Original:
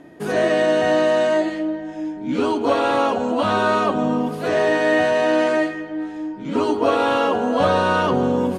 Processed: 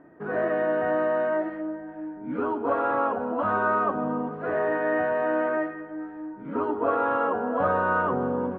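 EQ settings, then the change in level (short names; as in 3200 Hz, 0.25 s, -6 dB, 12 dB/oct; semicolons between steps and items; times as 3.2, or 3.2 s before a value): ladder low-pass 1700 Hz, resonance 45%; bell 460 Hz +2 dB 0.3 oct; 0.0 dB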